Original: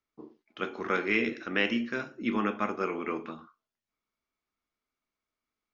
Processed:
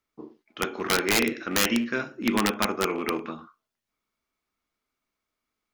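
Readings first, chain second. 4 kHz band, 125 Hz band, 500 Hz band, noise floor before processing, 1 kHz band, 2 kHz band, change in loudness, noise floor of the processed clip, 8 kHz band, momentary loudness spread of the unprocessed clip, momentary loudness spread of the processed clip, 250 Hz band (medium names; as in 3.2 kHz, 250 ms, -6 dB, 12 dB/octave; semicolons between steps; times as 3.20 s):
+10.5 dB, +5.5 dB, +4.0 dB, under -85 dBFS, +4.5 dB, +3.0 dB, +5.0 dB, -85 dBFS, no reading, 10 LU, 10 LU, +4.5 dB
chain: rattle on loud lows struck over -39 dBFS, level -37 dBFS; integer overflow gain 18.5 dB; trim +5 dB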